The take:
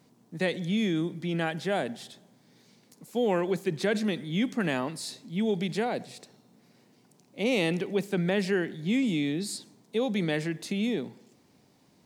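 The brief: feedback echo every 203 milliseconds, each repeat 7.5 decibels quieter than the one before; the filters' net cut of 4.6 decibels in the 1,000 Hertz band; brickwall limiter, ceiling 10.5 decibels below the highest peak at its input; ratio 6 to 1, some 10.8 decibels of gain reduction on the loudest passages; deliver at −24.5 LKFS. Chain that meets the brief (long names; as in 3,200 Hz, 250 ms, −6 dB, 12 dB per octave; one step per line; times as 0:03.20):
parametric band 1,000 Hz −7 dB
downward compressor 6 to 1, threshold −35 dBFS
brickwall limiter −34 dBFS
repeating echo 203 ms, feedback 42%, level −7.5 dB
level +17.5 dB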